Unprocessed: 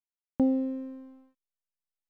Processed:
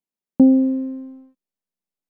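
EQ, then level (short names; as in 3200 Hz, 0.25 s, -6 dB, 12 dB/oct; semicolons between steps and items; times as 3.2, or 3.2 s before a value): EQ curve 110 Hz 0 dB, 190 Hz +15 dB, 1500 Hz 0 dB; 0.0 dB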